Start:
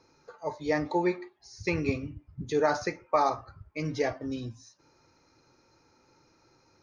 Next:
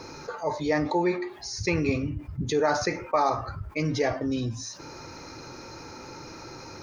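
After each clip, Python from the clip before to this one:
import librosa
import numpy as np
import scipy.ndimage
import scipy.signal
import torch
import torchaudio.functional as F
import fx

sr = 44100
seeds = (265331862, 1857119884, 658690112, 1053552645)

y = fx.env_flatten(x, sr, amount_pct=50)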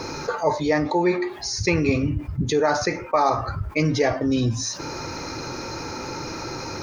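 y = fx.rider(x, sr, range_db=5, speed_s=0.5)
y = y * 10.0 ** (5.5 / 20.0)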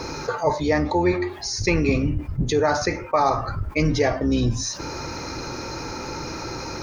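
y = fx.octave_divider(x, sr, octaves=2, level_db=-5.0)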